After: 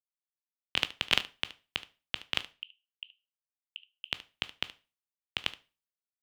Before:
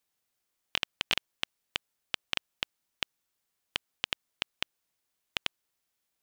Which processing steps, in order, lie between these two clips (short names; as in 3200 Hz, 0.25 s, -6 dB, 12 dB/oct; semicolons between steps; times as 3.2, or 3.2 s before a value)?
2.51–4.05 Butterworth band-pass 2900 Hz, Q 6; harmonic-percussive split percussive +7 dB; echo 73 ms -16.5 dB; on a send at -14 dB: reverb RT60 0.40 s, pre-delay 13 ms; on the sum: three-band expander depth 100%; gain -8 dB